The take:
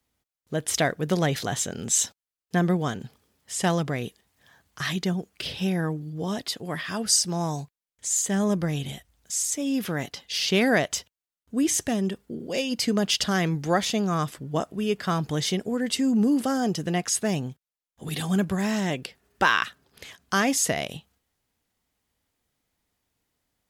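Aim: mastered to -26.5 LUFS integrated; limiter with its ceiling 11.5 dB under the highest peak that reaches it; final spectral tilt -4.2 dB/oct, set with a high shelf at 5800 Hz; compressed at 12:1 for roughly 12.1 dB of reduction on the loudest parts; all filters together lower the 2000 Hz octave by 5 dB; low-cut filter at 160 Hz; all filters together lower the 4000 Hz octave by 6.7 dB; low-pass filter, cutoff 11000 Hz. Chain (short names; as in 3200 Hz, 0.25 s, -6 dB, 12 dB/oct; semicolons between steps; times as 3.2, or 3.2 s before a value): HPF 160 Hz; LPF 11000 Hz; bell 2000 Hz -5 dB; bell 4000 Hz -6 dB; high shelf 5800 Hz -3.5 dB; compressor 12:1, threshold -31 dBFS; gain +11.5 dB; limiter -16.5 dBFS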